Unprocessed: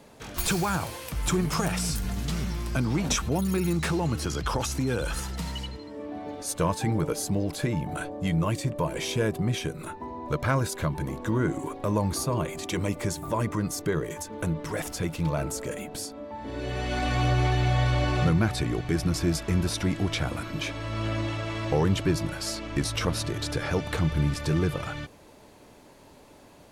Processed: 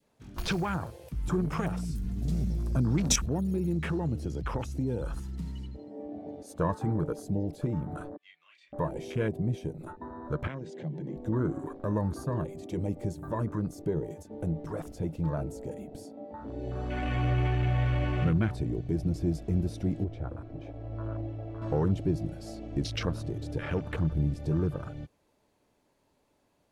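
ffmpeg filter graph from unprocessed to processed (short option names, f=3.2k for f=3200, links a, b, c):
-filter_complex "[0:a]asettb=1/sr,asplit=3[a][b][c];[a]atrim=end=2.224[d];[b]atrim=start=2.22:end=3.26,asetpts=PTS-STARTPTS,afade=t=in:d=0.004:c=qsin,afade=t=out:st=1.036:d=0.004:c=qsin,bass=f=250:g=4,treble=f=4k:g=7,bandreject=f=3k:w=21[e];[c]atrim=start=3.256[f];[d][e]acrossfade=d=0.004:c1=hsin:c2=qsin[g];[g][f]acrossfade=d=0.004:c1=qsin:c2=hsin,asettb=1/sr,asplit=3[h][i][j];[h]atrim=end=8.174[k];[i]atrim=start=8.17:end=8.73,asetpts=PTS-STARTPTS,afade=t=in:d=0.004:c=qsin,afade=t=out:st=0.556:d=0.004:c=qsin,asuperpass=centerf=2600:order=4:qfactor=1.3,asplit=2[l][m];[m]adelay=30,volume=-2.5dB[n];[l][n]amix=inputs=2:normalize=0,atrim=end_sample=24696[o];[j]atrim=start=8.726[p];[k][o]acrossfade=d=0.004:c1=hsin:c2=qsin[q];[q][p]acrossfade=d=0.004:c1=qsin:c2=hsin,asettb=1/sr,asplit=3[r][s][t];[r]atrim=end=10.474[u];[s]atrim=start=10.47:end=11.17,asetpts=PTS-STARTPTS,afade=t=in:d=0.004:c=qsin,afade=t=out:st=0.696:d=0.004:c=qsin,acompressor=threshold=-29dB:ratio=10:attack=3.2:release=140:knee=1:detection=peak,highpass=f=150:w=0.5412,highpass=f=150:w=1.3066,equalizer=f=160:t=q:w=4:g=8,equalizer=f=360:t=q:w=4:g=4,equalizer=f=1.3k:t=q:w=4:g=-5,equalizer=f=1.9k:t=q:w=4:g=9,equalizer=f=3.1k:t=q:w=4:g=7,lowpass=f=6.7k:w=0.5412,lowpass=f=6.7k:w=1.3066[v];[t]atrim=start=11.166[w];[u][v]acrossfade=d=0.004:c1=hsin:c2=qsin[x];[x][w]acrossfade=d=0.004:c1=qsin:c2=hsin,asettb=1/sr,asplit=3[y][z][aa];[y]atrim=end=20.044[ab];[z]atrim=start=20.04:end=21.62,asetpts=PTS-STARTPTS,afade=t=in:d=0.004:c=qsin,afade=t=out:st=1.576:d=0.004:c=qsin,lowpass=f=1k:p=1,equalizer=f=190:w=1.9:g=-13[ac];[aa]atrim=start=21.616[ad];[ab][ac]acrossfade=d=0.004:c1=hsin:c2=qsin[ae];[ae][ad]acrossfade=d=0.004:c1=qsin:c2=hsin,afwtdn=0.0224,adynamicequalizer=threshold=0.00631:dfrequency=930:dqfactor=0.77:tfrequency=930:tqfactor=0.77:attack=5:release=100:ratio=0.375:range=3:mode=cutabove:tftype=bell,volume=-2.5dB"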